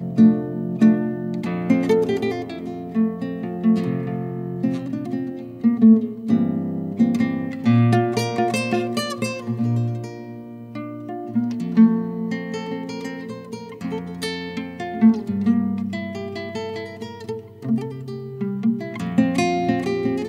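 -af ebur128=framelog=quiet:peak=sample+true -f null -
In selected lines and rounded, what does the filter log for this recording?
Integrated loudness:
  I:         -21.8 LUFS
  Threshold: -32.2 LUFS
Loudness range:
  LRA:         6.0 LU
  Threshold: -42.5 LUFS
  LRA low:   -25.6 LUFS
  LRA high:  -19.6 LUFS
Sample peak:
  Peak:       -4.6 dBFS
True peak:
  Peak:       -4.6 dBFS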